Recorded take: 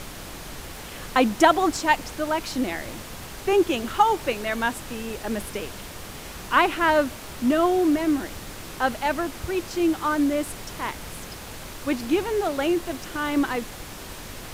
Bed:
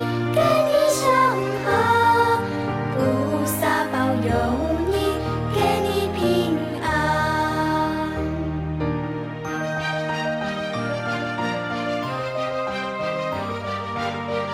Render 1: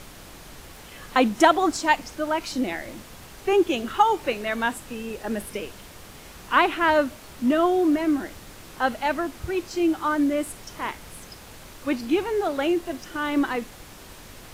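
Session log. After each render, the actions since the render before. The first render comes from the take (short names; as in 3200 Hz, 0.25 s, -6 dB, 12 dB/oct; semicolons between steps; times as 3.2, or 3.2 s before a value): noise print and reduce 6 dB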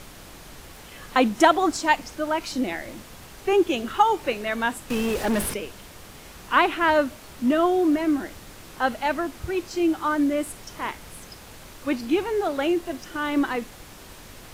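4.9–5.54 sample leveller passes 3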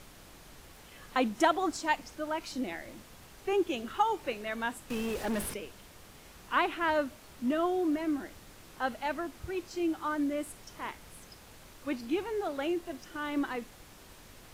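gain -9 dB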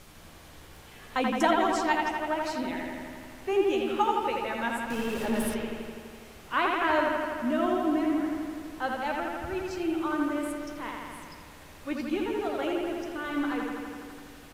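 doubler 13 ms -10.5 dB; analogue delay 83 ms, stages 2048, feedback 77%, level -3 dB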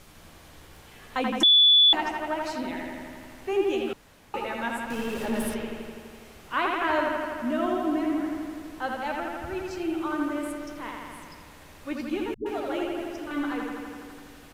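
1.43–1.93 bleep 3450 Hz -13.5 dBFS; 3.93–4.34 room tone; 12.34–13.31 dispersion highs, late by 0.119 s, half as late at 300 Hz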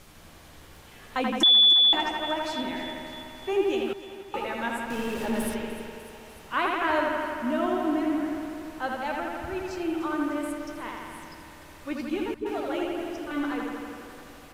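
thinning echo 0.299 s, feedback 70%, high-pass 210 Hz, level -15 dB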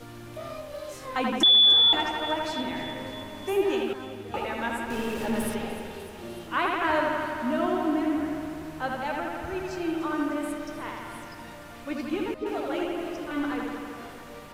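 add bed -20.5 dB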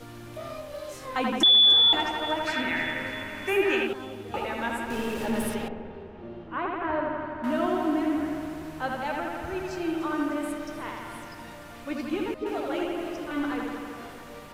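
2.47–3.87 band shelf 1900 Hz +11.5 dB 1.2 oct; 5.68–7.44 tape spacing loss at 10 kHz 44 dB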